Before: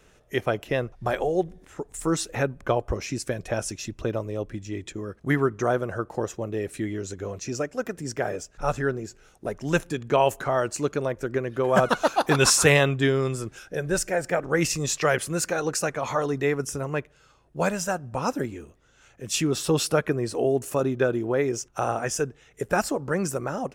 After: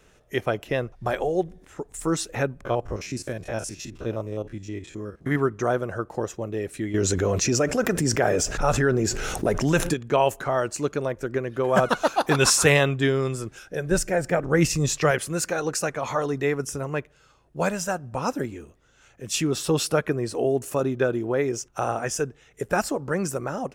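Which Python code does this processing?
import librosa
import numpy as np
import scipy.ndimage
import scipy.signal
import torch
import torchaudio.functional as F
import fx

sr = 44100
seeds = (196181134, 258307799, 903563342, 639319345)

y = fx.spec_steps(x, sr, hold_ms=50, at=(2.65, 5.36))
y = fx.env_flatten(y, sr, amount_pct=70, at=(6.94, 9.94))
y = fx.low_shelf(y, sr, hz=270.0, db=8.5, at=(13.91, 15.11))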